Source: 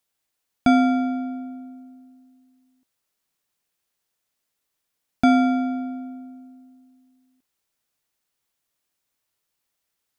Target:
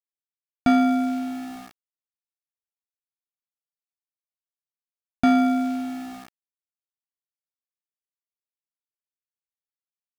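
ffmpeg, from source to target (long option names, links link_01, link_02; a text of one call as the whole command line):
ffmpeg -i in.wav -af "acontrast=80,aeval=exprs='val(0)*gte(abs(val(0)),0.0376)':channel_layout=same,volume=-7dB" out.wav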